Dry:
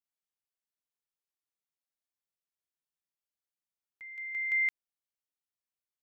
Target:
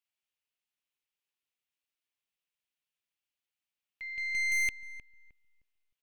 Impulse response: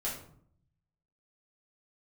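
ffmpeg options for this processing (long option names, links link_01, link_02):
-filter_complex "[0:a]equalizer=frequency=2700:width=1.4:gain=11.5,aeval=exprs='(tanh(25.1*val(0)+0.45)-tanh(0.45))/25.1':channel_layout=same,asplit=2[link_01][link_02];[link_02]adelay=309,lowpass=frequency=970:poles=1,volume=-10dB,asplit=2[link_03][link_04];[link_04]adelay=309,lowpass=frequency=970:poles=1,volume=0.32,asplit=2[link_05][link_06];[link_06]adelay=309,lowpass=frequency=970:poles=1,volume=0.32,asplit=2[link_07][link_08];[link_08]adelay=309,lowpass=frequency=970:poles=1,volume=0.32[link_09];[link_03][link_05][link_07][link_09]amix=inputs=4:normalize=0[link_10];[link_01][link_10]amix=inputs=2:normalize=0"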